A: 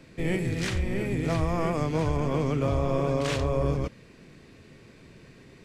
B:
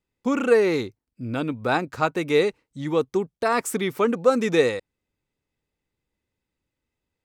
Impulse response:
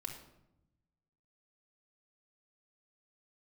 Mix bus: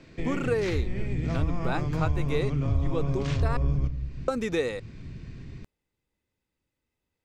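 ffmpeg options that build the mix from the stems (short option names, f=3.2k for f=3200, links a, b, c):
-filter_complex "[0:a]lowpass=f=7k:w=0.5412,lowpass=f=7k:w=1.3066,asubboost=boost=7:cutoff=180,volume=-2.5dB,asplit=2[a][b];[b]volume=-5.5dB[c];[1:a]volume=-1dB,asplit=3[d][e][f];[d]atrim=end=3.57,asetpts=PTS-STARTPTS,afade=t=out:st=3.566:d=0.004:c=hsin[g];[e]atrim=start=3.57:end=4.28,asetpts=PTS-STARTPTS,volume=0[h];[f]atrim=start=4.28,asetpts=PTS-STARTPTS,afade=t=in:d=0.004:c=hsin[i];[g][h][i]concat=n=3:v=0:a=1[j];[2:a]atrim=start_sample=2205[k];[c][k]afir=irnorm=-1:irlink=0[l];[a][j][l]amix=inputs=3:normalize=0,acompressor=threshold=-29dB:ratio=2"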